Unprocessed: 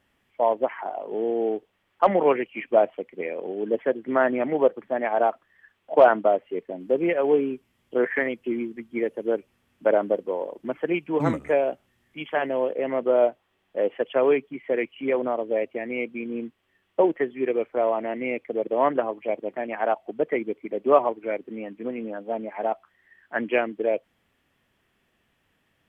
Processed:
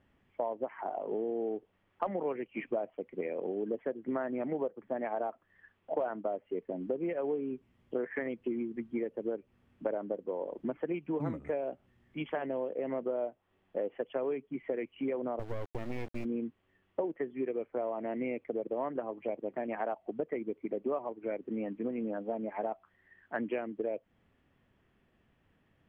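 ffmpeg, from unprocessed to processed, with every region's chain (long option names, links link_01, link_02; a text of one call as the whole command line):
ffmpeg -i in.wav -filter_complex "[0:a]asettb=1/sr,asplit=3[link_01][link_02][link_03];[link_01]atrim=end=15.394[link_04];[link_02]atrim=start=15.39:end=16.25,asetpts=PTS-STARTPTS,afade=type=in:duration=0.004:curve=qsin,afade=type=out:start_time=0.856:duration=0.004:curve=qsin,asoftclip=type=hard:threshold=-22dB,acrusher=bits=4:dc=4:mix=0:aa=0.000001[link_05];[link_03]atrim=start=16.246[link_06];[link_04][link_05]acrossfade=duration=0.004:curve1=hsin:curve2=qsin[link_07];[link_07][link_06]acrossfade=duration=0.004:curve1=qsin:curve2=hsin,lowpass=frequency=1800:poles=1,lowshelf=frequency=350:gain=6.5,acompressor=threshold=-29dB:ratio=6,volume=-2.5dB" out.wav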